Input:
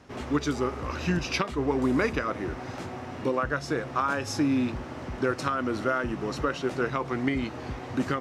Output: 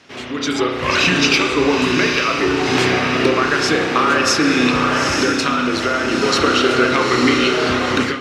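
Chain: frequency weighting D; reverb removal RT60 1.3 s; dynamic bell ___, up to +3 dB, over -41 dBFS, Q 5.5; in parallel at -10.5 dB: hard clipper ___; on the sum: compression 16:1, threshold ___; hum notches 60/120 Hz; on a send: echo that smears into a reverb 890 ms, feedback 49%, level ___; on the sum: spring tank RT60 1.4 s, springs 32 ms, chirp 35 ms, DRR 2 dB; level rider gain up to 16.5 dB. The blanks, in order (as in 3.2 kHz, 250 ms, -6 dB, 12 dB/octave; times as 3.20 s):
400 Hz, -17 dBFS, -28 dBFS, -3 dB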